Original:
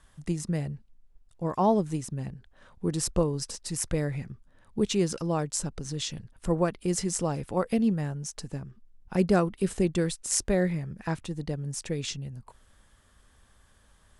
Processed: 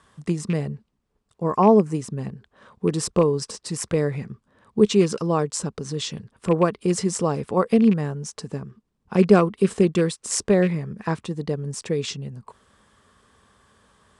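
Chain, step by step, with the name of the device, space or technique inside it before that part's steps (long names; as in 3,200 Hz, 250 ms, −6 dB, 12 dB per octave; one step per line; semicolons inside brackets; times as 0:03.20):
car door speaker with a rattle (loose part that buzzes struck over −26 dBFS, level −29 dBFS; loudspeaker in its box 94–9,200 Hz, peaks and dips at 210 Hz +5 dB, 430 Hz +8 dB, 1,100 Hz +7 dB, 6,500 Hz −3 dB)
0:01.43–0:01.94: parametric band 3,600 Hz −7.5 dB → −15 dB 0.39 octaves
level +4 dB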